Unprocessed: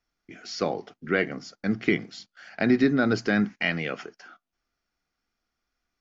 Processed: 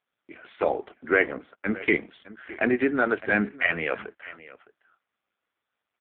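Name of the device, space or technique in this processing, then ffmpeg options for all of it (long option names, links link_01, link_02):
satellite phone: -filter_complex "[0:a]asplit=3[link_01][link_02][link_03];[link_01]afade=type=out:start_time=2.68:duration=0.02[link_04];[link_02]equalizer=frequency=200:width_type=o:width=2.4:gain=-5,afade=type=in:start_time=2.68:duration=0.02,afade=type=out:start_time=3.27:duration=0.02[link_05];[link_03]afade=type=in:start_time=3.27:duration=0.02[link_06];[link_04][link_05][link_06]amix=inputs=3:normalize=0,highpass=340,lowpass=3200,aecho=1:1:611:0.126,volume=6dB" -ar 8000 -c:a libopencore_amrnb -b:a 5150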